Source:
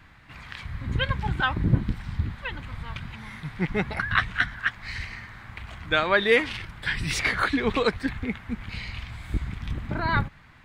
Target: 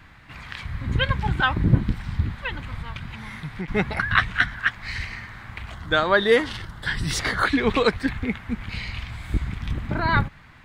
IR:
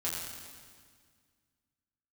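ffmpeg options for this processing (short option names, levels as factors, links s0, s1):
-filter_complex "[0:a]asettb=1/sr,asplit=3[s0][s1][s2];[s0]atrim=end=2.814[s3];[s1]atrim=start=2.81:end=3.68,asetpts=PTS-STARTPTS,afade=t=in:d=0.004:c=qsin,afade=t=out:st=0.866:d=0.004:c=qsin,acompressor=threshold=0.0251:ratio=6[s4];[s2]atrim=start=3.676[s5];[s3][s4]acrossfade=d=0.004:c1=hsin:c2=qsin[s6];[s6][s5]acrossfade=d=0.004:c1=qsin:c2=hsin,asettb=1/sr,asplit=3[s7][s8][s9];[s7]atrim=end=5.734[s10];[s8]atrim=start=5.73:end=7.45,asetpts=PTS-STARTPTS,afade=t=in:d=0.004:c=qsin,afade=t=out:st=1.716:d=0.004:c=qsin,equalizer=f=2400:t=o:w=0.36:g=-14[s11];[s9]atrim=start=7.446[s12];[s10][s11]acrossfade=d=0.004:c1=hsin:c2=qsin[s13];[s13][s12]acrossfade=d=0.004:c1=qsin:c2=hsin,volume=1.5"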